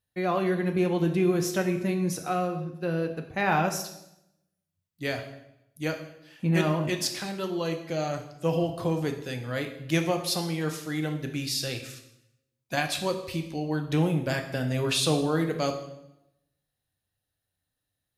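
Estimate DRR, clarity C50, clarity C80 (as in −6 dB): 4.5 dB, 9.0 dB, 12.0 dB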